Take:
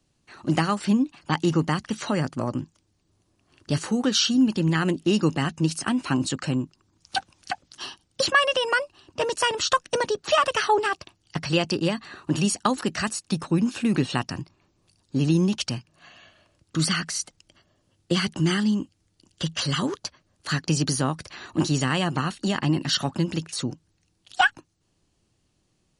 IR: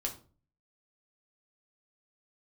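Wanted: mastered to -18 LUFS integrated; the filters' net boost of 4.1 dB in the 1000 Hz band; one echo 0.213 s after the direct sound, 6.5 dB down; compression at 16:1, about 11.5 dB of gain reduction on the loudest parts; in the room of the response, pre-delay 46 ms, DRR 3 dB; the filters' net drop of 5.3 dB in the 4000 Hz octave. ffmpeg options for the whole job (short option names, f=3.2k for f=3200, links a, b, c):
-filter_complex "[0:a]equalizer=f=1k:t=o:g=5.5,equalizer=f=4k:t=o:g=-8,acompressor=threshold=-23dB:ratio=16,aecho=1:1:213:0.473,asplit=2[a][b];[1:a]atrim=start_sample=2205,adelay=46[c];[b][c]afir=irnorm=-1:irlink=0,volume=-4.5dB[d];[a][d]amix=inputs=2:normalize=0,volume=9.5dB"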